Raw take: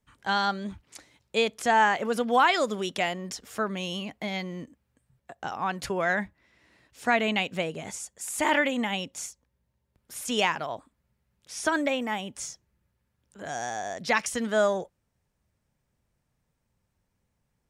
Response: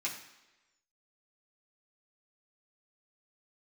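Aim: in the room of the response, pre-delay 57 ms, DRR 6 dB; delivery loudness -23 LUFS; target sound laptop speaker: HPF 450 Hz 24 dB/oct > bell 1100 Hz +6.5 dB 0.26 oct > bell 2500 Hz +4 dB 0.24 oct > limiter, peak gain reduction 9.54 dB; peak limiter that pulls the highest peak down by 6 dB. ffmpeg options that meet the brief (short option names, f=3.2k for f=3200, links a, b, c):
-filter_complex "[0:a]alimiter=limit=-17dB:level=0:latency=1,asplit=2[a][b];[1:a]atrim=start_sample=2205,adelay=57[c];[b][c]afir=irnorm=-1:irlink=0,volume=-9.5dB[d];[a][d]amix=inputs=2:normalize=0,highpass=f=450:w=0.5412,highpass=f=450:w=1.3066,equalizer=f=1.1k:t=o:w=0.26:g=6.5,equalizer=f=2.5k:t=o:w=0.24:g=4,volume=9.5dB,alimiter=limit=-11.5dB:level=0:latency=1"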